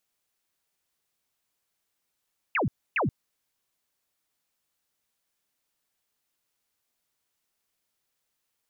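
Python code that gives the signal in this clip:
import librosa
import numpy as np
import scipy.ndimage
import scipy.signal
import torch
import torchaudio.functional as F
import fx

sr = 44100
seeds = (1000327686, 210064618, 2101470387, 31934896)

y = fx.laser_zaps(sr, level_db=-22.5, start_hz=2900.0, end_hz=96.0, length_s=0.13, wave='sine', shots=2, gap_s=0.28)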